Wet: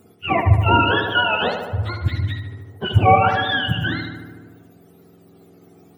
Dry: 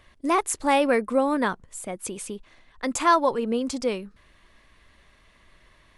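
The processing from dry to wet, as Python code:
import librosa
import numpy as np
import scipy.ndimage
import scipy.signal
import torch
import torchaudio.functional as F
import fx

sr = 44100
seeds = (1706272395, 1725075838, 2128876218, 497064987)

y = fx.octave_mirror(x, sr, pivot_hz=880.0)
y = fx.echo_filtered(y, sr, ms=75, feedback_pct=73, hz=2700.0, wet_db=-6.0)
y = y * librosa.db_to_amplitude(5.5)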